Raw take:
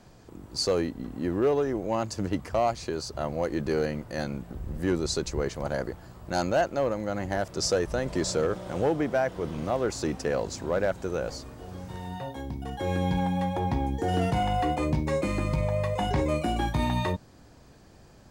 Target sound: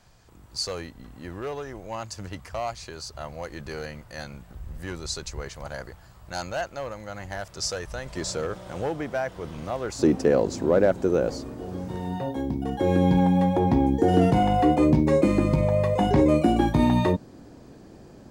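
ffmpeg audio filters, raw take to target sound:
-af "asetnsamples=n=441:p=0,asendcmd='8.17 equalizer g -5;9.99 equalizer g 11',equalizer=f=300:w=0.6:g=-12"

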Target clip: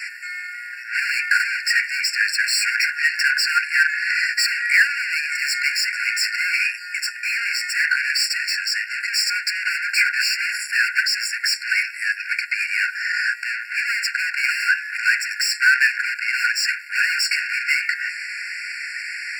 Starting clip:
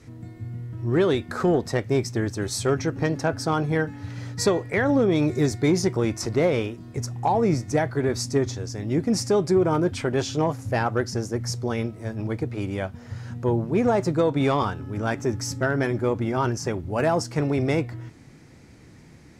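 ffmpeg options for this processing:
-filter_complex "[0:a]asplit=2[a][b];[b]highpass=f=720:p=1,volume=33dB,asoftclip=type=tanh:threshold=-12dB[c];[a][c]amix=inputs=2:normalize=0,lowpass=f=2.5k:p=1,volume=-6dB,afftfilt=real='re*eq(mod(floor(b*sr/1024/1400),2),1)':imag='im*eq(mod(floor(b*sr/1024/1400),2),1)':win_size=1024:overlap=0.75,volume=8.5dB"

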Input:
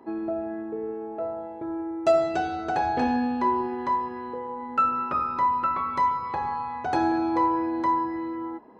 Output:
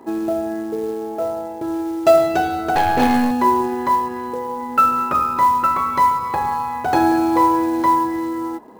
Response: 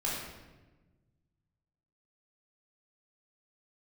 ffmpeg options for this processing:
-filter_complex "[0:a]acrusher=bits=6:mode=log:mix=0:aa=0.000001,asettb=1/sr,asplit=3[a][b][c];[a]atrim=end=2.754[d];[b]atrim=start=2.75:end=3.31,asetpts=PTS-STARTPTS,afade=t=in:d=0.004:c=qsin,afade=t=out:st=0.556:d=0.004:c=qsin,aeval=exprs='0.224*(cos(1*acos(clip(val(0)/0.224,-1,1)))-cos(1*PI/2))+0.0316*(cos(4*acos(clip(val(0)/0.224,-1,1)))-cos(4*PI/2))+0.0398*(cos(6*acos(clip(val(0)/0.224,-1,1)))-cos(6*PI/2))':c=same[e];[c]atrim=start=3.306[f];[d][e]acrossfade=d=0.004:c1=hsin:c2=qsin[g];[g][f]acrossfade=d=0.004:c1=qsin:c2=hsin,volume=8dB"

